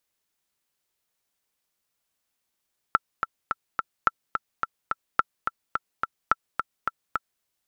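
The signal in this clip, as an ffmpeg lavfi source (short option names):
-f lavfi -i "aevalsrc='pow(10,(-5-6.5*gte(mod(t,4*60/214),60/214))/20)*sin(2*PI*1340*mod(t,60/214))*exp(-6.91*mod(t,60/214)/0.03)':d=4.48:s=44100"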